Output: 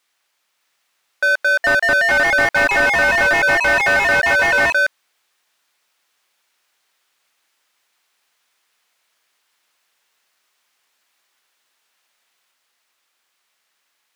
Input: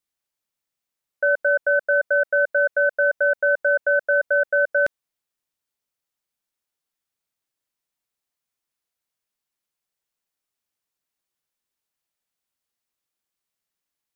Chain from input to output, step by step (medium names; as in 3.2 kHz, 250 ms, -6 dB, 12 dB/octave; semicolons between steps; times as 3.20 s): tilt shelf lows -6 dB; ever faster or slower copies 610 ms, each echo +3 st, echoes 3; overdrive pedal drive 29 dB, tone 1.4 kHz, clips at -6.5 dBFS